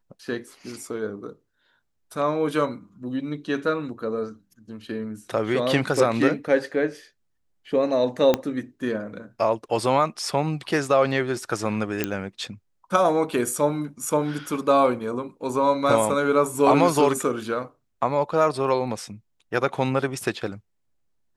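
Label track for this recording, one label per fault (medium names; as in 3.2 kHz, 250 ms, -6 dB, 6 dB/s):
8.340000	8.340000	pop -7 dBFS
12.040000	12.040000	pop -8 dBFS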